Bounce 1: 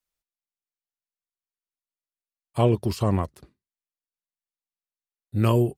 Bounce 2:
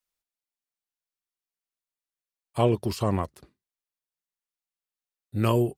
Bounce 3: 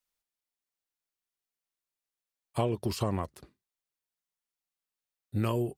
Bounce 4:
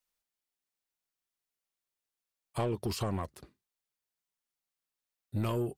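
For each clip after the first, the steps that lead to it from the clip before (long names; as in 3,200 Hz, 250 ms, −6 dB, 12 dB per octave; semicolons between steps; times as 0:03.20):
low-shelf EQ 240 Hz −5 dB
downward compressor, threshold −25 dBFS, peak gain reduction 9 dB
soft clipping −24.5 dBFS, distortion −13 dB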